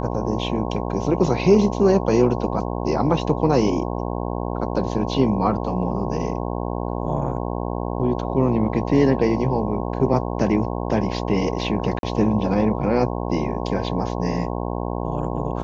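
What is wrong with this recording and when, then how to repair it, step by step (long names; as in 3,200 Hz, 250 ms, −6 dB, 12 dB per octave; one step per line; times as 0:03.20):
mains buzz 60 Hz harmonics 18 −26 dBFS
0:11.99–0:12.03: drop-out 42 ms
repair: hum removal 60 Hz, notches 18
repair the gap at 0:11.99, 42 ms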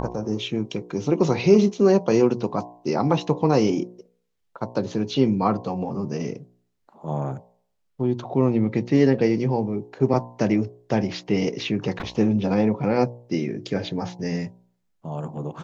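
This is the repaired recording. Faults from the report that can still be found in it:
none of them is left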